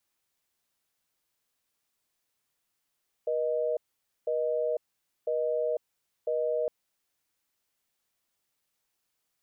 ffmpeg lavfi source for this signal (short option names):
-f lavfi -i "aevalsrc='0.0376*(sin(2*PI*480*t)+sin(2*PI*620*t))*clip(min(mod(t,1),0.5-mod(t,1))/0.005,0,1)':d=3.41:s=44100"